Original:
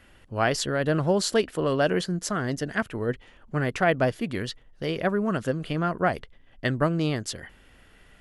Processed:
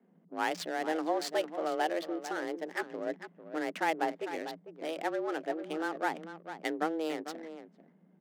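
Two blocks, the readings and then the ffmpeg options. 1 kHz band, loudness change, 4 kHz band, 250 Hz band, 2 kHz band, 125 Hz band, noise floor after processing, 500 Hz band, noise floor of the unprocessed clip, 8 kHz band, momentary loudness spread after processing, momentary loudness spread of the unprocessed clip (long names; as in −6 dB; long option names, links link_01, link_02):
−4.0 dB, −8.5 dB, −9.5 dB, −9.5 dB, −7.5 dB, −29.0 dB, −64 dBFS, −8.0 dB, −56 dBFS, −13.0 dB, 11 LU, 10 LU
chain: -af "aecho=1:1:448:0.282,adynamicsmooth=sensitivity=6.5:basefreq=520,afreqshift=160,volume=-8.5dB"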